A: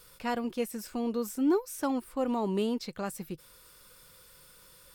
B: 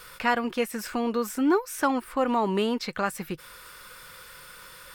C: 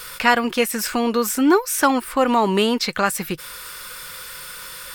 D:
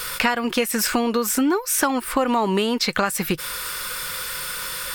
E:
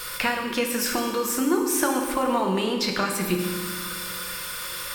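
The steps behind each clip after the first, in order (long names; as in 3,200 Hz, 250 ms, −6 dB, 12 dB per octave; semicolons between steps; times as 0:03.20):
parametric band 1,600 Hz +11.5 dB 2.1 octaves; in parallel at −1 dB: downward compressor, threshold −35 dBFS, peak gain reduction 15 dB
high-shelf EQ 2,400 Hz +7.5 dB; level +6.5 dB
downward compressor 10 to 1, threshold −23 dBFS, peak gain reduction 13.5 dB; level +6 dB
convolution reverb RT60 1.6 s, pre-delay 3 ms, DRR 1 dB; level −5.5 dB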